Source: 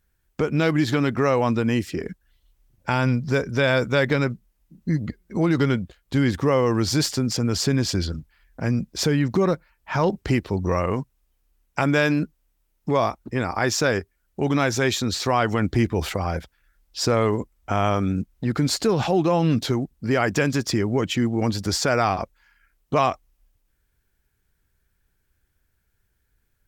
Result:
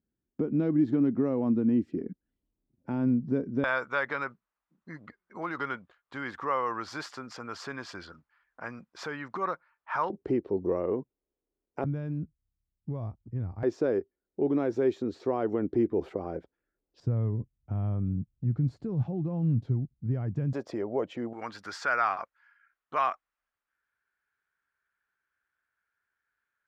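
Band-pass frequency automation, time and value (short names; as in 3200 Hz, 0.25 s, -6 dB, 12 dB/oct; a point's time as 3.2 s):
band-pass, Q 2.3
260 Hz
from 3.64 s 1200 Hz
from 10.1 s 390 Hz
from 11.84 s 100 Hz
from 13.63 s 370 Hz
from 17 s 120 Hz
from 20.53 s 590 Hz
from 21.33 s 1400 Hz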